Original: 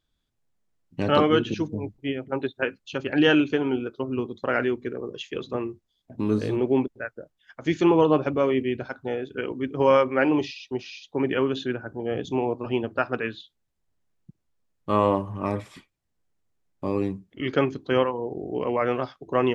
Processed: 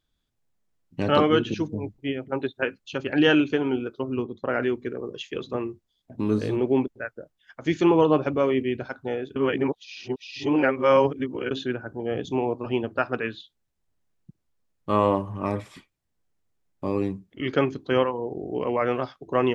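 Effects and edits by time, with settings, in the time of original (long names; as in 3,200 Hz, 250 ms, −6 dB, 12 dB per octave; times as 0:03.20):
0:04.22–0:04.63: high-shelf EQ 2,200 Hz −10 dB
0:09.36–0:11.51: reverse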